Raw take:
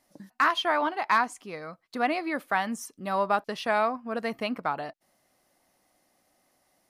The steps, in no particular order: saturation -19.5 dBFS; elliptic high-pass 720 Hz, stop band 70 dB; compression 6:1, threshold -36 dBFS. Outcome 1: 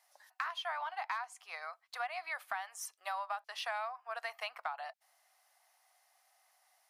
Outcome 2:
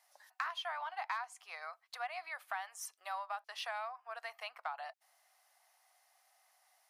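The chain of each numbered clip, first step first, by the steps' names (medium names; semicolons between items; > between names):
elliptic high-pass > compression > saturation; compression > saturation > elliptic high-pass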